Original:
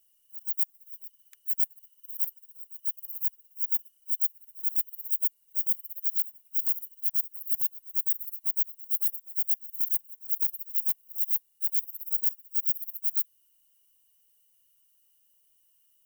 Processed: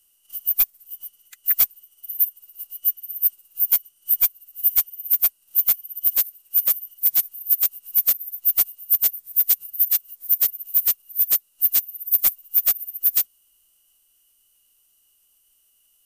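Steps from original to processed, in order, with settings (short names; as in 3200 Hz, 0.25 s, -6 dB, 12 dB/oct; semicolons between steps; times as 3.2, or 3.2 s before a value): transient shaper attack +7 dB, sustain +1 dB; formant-preserving pitch shift -6.5 st; gain +5 dB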